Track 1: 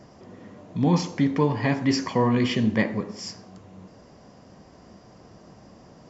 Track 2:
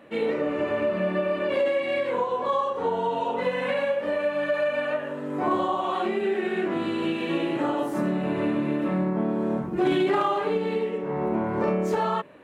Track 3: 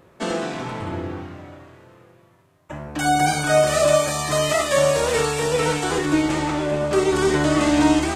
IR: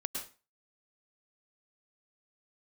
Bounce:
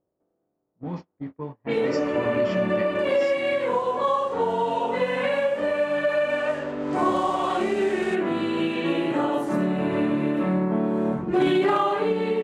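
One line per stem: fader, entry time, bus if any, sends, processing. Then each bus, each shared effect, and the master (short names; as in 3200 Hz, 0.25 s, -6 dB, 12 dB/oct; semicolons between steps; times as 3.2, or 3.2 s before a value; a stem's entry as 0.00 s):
-12.0 dB, 0.00 s, no send, dry
+2.0 dB, 1.55 s, no send, notch 5200 Hz, Q 30
-18.5 dB, 0.00 s, no send, per-bin compression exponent 0.4; compressor, threshold -16 dBFS, peak gain reduction 7.5 dB; auto duck -13 dB, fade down 1.40 s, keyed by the first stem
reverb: off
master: gate -33 dBFS, range -32 dB; low-pass opened by the level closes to 640 Hz, open at -20.5 dBFS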